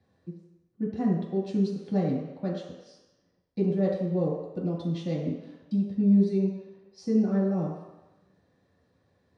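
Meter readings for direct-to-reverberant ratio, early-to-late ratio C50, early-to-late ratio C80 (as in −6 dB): −6.0 dB, 2.5 dB, 4.5 dB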